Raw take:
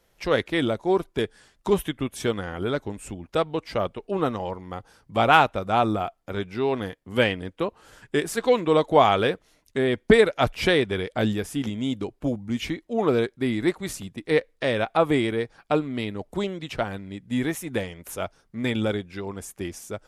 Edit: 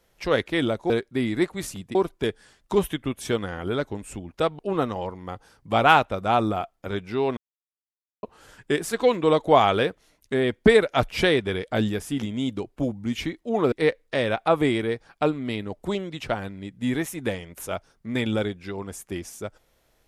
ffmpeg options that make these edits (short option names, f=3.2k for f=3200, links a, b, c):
-filter_complex "[0:a]asplit=7[a][b][c][d][e][f][g];[a]atrim=end=0.902[h];[b]atrim=start=13.158:end=14.212[i];[c]atrim=start=0.898:end=3.542[j];[d]atrim=start=4.028:end=6.81,asetpts=PTS-STARTPTS,afade=t=out:st=2.778:d=0.004:c=hsin[k];[e]atrim=start=6.81:end=7.67,asetpts=PTS-STARTPTS,volume=0[l];[f]atrim=start=7.67:end=13.162,asetpts=PTS-STARTPTS,afade=t=in:d=0.004:c=hsin[m];[g]atrim=start=14.208[n];[h][i]acrossfade=d=0.004:c1=hsin:c2=hsin[o];[o][j]acrossfade=d=0.004:c1=hsin:c2=hsin[p];[k][l][m]concat=n=3:v=0:a=1[q];[p][q]acrossfade=d=0.004:c1=hsin:c2=hsin[r];[r][n]acrossfade=d=0.004:c1=hsin:c2=hsin"